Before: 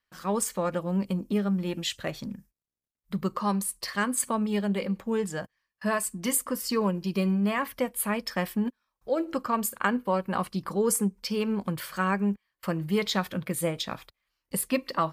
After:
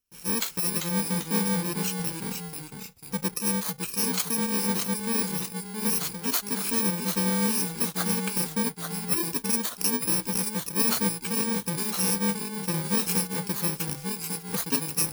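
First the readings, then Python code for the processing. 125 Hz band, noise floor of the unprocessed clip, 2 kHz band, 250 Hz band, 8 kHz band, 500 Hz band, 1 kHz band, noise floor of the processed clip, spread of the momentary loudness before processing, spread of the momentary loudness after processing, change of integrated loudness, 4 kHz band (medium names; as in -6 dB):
+0.5 dB, under -85 dBFS, -1.0 dB, -1.0 dB, +6.0 dB, -5.0 dB, -4.0 dB, -45 dBFS, 8 LU, 7 LU, +3.0 dB, +4.5 dB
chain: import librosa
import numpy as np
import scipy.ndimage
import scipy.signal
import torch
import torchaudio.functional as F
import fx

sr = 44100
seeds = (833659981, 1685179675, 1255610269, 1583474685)

y = fx.bit_reversed(x, sr, seeds[0], block=64)
y = fx.echo_pitch(y, sr, ms=367, semitones=-1, count=2, db_per_echo=-6.0)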